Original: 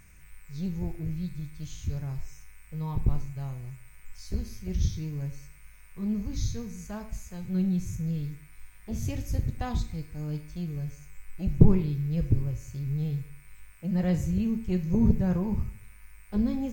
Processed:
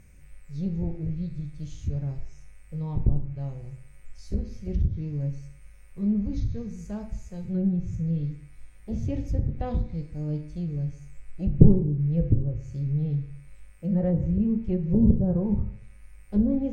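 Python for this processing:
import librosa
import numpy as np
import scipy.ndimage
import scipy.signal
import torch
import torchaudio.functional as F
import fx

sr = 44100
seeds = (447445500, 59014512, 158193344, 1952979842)

y = fx.env_lowpass_down(x, sr, base_hz=720.0, full_db=-20.0)
y = fx.low_shelf_res(y, sr, hz=760.0, db=7.0, q=1.5)
y = fx.rev_fdn(y, sr, rt60_s=0.57, lf_ratio=0.95, hf_ratio=0.85, size_ms=11.0, drr_db=8.5)
y = y * librosa.db_to_amplitude(-5.0)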